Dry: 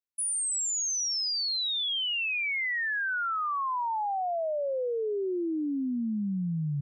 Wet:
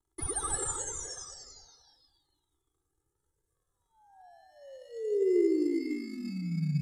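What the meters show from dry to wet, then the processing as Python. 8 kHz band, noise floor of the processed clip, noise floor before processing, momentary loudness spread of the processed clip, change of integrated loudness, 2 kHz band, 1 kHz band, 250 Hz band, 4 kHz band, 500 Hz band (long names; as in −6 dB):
−6.5 dB, −83 dBFS, −30 dBFS, 20 LU, −3.0 dB, −21.0 dB, −16.0 dB, −1.0 dB, −22.0 dB, −0.5 dB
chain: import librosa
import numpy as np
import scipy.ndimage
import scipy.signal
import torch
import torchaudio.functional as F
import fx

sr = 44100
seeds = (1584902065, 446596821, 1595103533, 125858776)

p1 = fx.dmg_crackle(x, sr, seeds[0], per_s=400.0, level_db=-59.0)
p2 = scipy.signal.sosfilt(scipy.signal.cheby2(4, 80, [1200.0, 2700.0], 'bandstop', fs=sr, output='sos'), p1)
p3 = fx.rev_gated(p2, sr, seeds[1], gate_ms=340, shape='rising', drr_db=2.0)
p4 = fx.sample_hold(p3, sr, seeds[2], rate_hz=2400.0, jitter_pct=0)
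p5 = p3 + F.gain(torch.from_numpy(p4), -10.0).numpy()
p6 = scipy.signal.sosfilt(scipy.signal.butter(2, 7000.0, 'lowpass', fs=sr, output='sos'), p5)
p7 = fx.peak_eq(p6, sr, hz=2700.0, db=-9.5, octaves=0.31)
p8 = p7 + 0.92 * np.pad(p7, (int(2.4 * sr / 1000.0), 0))[:len(p7)]
p9 = p8 + fx.echo_single(p8, sr, ms=512, db=-15.5, dry=0)
p10 = fx.comb_cascade(p9, sr, direction='rising', hz=0.41)
y = F.gain(torch.from_numpy(p10), 4.0).numpy()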